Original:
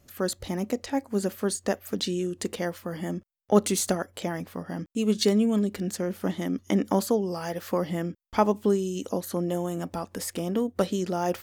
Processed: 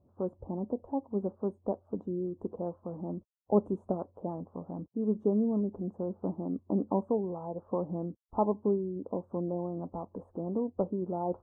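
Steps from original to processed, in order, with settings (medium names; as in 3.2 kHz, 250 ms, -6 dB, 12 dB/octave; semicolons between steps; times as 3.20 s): elliptic low-pass 1 kHz, stop band 50 dB; trim -5 dB; Vorbis 32 kbps 22.05 kHz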